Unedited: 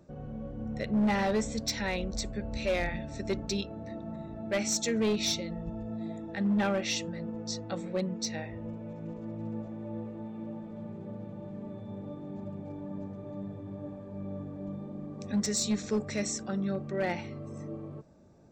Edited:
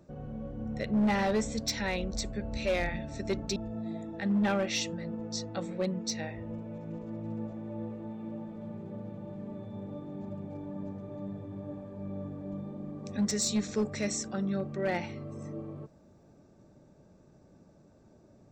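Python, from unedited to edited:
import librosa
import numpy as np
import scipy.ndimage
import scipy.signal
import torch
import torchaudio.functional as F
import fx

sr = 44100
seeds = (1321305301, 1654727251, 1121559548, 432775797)

y = fx.edit(x, sr, fx.cut(start_s=3.56, length_s=2.15), tone=tone)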